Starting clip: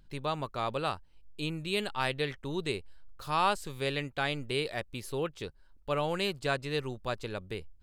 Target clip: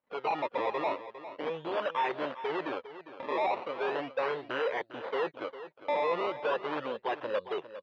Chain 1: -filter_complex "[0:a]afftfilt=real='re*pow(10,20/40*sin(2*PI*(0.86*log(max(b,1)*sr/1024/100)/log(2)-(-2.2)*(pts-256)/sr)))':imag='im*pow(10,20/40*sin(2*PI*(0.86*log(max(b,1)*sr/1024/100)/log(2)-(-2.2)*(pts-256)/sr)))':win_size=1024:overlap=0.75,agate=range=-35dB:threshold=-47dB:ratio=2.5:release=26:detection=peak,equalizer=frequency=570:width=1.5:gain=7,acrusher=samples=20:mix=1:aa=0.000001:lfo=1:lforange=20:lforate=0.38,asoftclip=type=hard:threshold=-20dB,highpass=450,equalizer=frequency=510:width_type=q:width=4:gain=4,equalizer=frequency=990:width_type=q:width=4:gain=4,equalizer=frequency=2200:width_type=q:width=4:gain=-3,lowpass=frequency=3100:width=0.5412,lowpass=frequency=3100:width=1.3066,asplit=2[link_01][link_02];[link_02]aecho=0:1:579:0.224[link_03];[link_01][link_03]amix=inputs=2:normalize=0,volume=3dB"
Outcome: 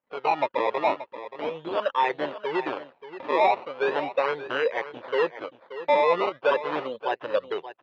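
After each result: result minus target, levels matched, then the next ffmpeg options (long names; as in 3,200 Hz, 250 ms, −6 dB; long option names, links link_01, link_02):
echo 175 ms late; hard clipping: distortion −7 dB
-filter_complex "[0:a]afftfilt=real='re*pow(10,20/40*sin(2*PI*(0.86*log(max(b,1)*sr/1024/100)/log(2)-(-2.2)*(pts-256)/sr)))':imag='im*pow(10,20/40*sin(2*PI*(0.86*log(max(b,1)*sr/1024/100)/log(2)-(-2.2)*(pts-256)/sr)))':win_size=1024:overlap=0.75,agate=range=-35dB:threshold=-47dB:ratio=2.5:release=26:detection=peak,equalizer=frequency=570:width=1.5:gain=7,acrusher=samples=20:mix=1:aa=0.000001:lfo=1:lforange=20:lforate=0.38,asoftclip=type=hard:threshold=-20dB,highpass=450,equalizer=frequency=510:width_type=q:width=4:gain=4,equalizer=frequency=990:width_type=q:width=4:gain=4,equalizer=frequency=2200:width_type=q:width=4:gain=-3,lowpass=frequency=3100:width=0.5412,lowpass=frequency=3100:width=1.3066,asplit=2[link_01][link_02];[link_02]aecho=0:1:404:0.224[link_03];[link_01][link_03]amix=inputs=2:normalize=0,volume=3dB"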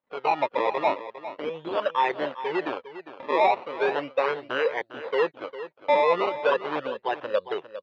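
hard clipping: distortion −7 dB
-filter_complex "[0:a]afftfilt=real='re*pow(10,20/40*sin(2*PI*(0.86*log(max(b,1)*sr/1024/100)/log(2)-(-2.2)*(pts-256)/sr)))':imag='im*pow(10,20/40*sin(2*PI*(0.86*log(max(b,1)*sr/1024/100)/log(2)-(-2.2)*(pts-256)/sr)))':win_size=1024:overlap=0.75,agate=range=-35dB:threshold=-47dB:ratio=2.5:release=26:detection=peak,equalizer=frequency=570:width=1.5:gain=7,acrusher=samples=20:mix=1:aa=0.000001:lfo=1:lforange=20:lforate=0.38,asoftclip=type=hard:threshold=-30.5dB,highpass=450,equalizer=frequency=510:width_type=q:width=4:gain=4,equalizer=frequency=990:width_type=q:width=4:gain=4,equalizer=frequency=2200:width_type=q:width=4:gain=-3,lowpass=frequency=3100:width=0.5412,lowpass=frequency=3100:width=1.3066,asplit=2[link_01][link_02];[link_02]aecho=0:1:404:0.224[link_03];[link_01][link_03]amix=inputs=2:normalize=0,volume=3dB"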